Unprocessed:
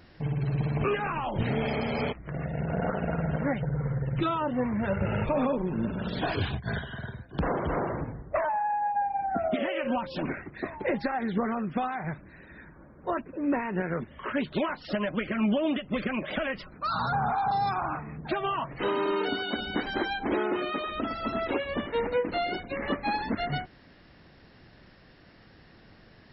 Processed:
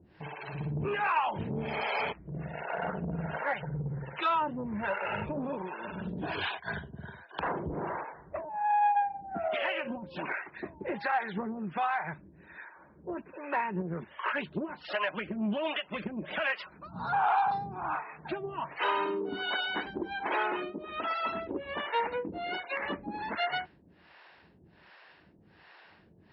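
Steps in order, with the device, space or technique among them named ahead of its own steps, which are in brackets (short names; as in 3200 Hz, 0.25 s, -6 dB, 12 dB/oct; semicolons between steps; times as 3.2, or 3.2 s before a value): guitar amplifier with harmonic tremolo (harmonic tremolo 1.3 Hz, depth 100%, crossover 460 Hz; soft clip -23 dBFS, distortion -22 dB; speaker cabinet 95–4500 Hz, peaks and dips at 120 Hz -10 dB, 250 Hz -8 dB, 510 Hz -3 dB, 930 Hz +7 dB, 1600 Hz +4 dB, 2600 Hz +5 dB); gain +2 dB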